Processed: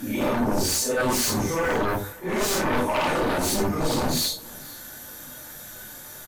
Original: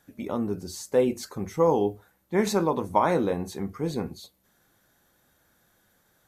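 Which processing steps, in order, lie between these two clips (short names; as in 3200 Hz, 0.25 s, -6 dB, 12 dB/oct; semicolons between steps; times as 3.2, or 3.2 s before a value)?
phase scrambler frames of 0.2 s; high shelf 4200 Hz +9.5 dB; reverse; compressor 20:1, threshold -34 dBFS, peak gain reduction 19.5 dB; reverse; sine folder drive 11 dB, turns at -26 dBFS; echo 0.478 s -22.5 dB; on a send at -5 dB: reverb RT60 0.20 s, pre-delay 3 ms; on the sum: gain +4.5 dB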